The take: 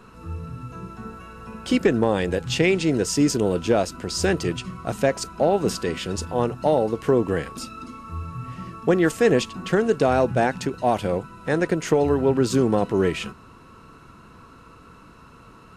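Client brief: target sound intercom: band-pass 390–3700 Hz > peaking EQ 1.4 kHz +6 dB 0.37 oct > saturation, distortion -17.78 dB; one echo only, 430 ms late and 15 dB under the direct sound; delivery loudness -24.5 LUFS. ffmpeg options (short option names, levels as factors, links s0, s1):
-af "highpass=390,lowpass=3700,equalizer=f=1400:t=o:w=0.37:g=6,aecho=1:1:430:0.178,asoftclip=threshold=0.211,volume=1.26"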